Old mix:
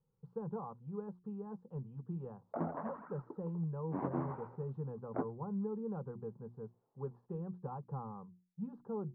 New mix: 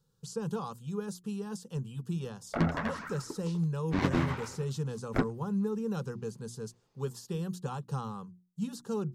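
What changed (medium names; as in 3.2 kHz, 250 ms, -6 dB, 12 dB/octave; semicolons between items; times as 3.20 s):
background: remove high-pass 210 Hz 12 dB/octave; master: remove four-pole ladder low-pass 1.1 kHz, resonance 35%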